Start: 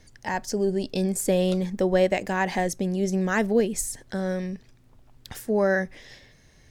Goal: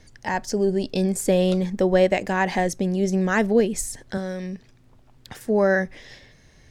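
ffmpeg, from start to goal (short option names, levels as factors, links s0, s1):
-filter_complex "[0:a]asettb=1/sr,asplit=3[s0][s1][s2];[s0]atrim=end=4.174[s3];[s1]atrim=start=4.17:end=5.41,asetpts=PTS-STARTPTS,afade=t=in:d=0.004:c=qsin,afade=t=out:st=1.236:d=0.004:c=qsin,acrossover=split=100|2400[s4][s5][s6];[s4]acompressor=threshold=0.00178:ratio=4[s7];[s5]acompressor=threshold=0.0316:ratio=4[s8];[s6]acompressor=threshold=0.00562:ratio=4[s9];[s7][s8][s9]amix=inputs=3:normalize=0[s10];[s2]atrim=start=5.406[s11];[s3][s10]acrossfade=d=0.004:c1=hsin:c2=qsin[s12];[s12][s11]acrossfade=d=0.004:c1=qsin:c2=hsin,highshelf=f=10000:g=-7.5,volume=1.41"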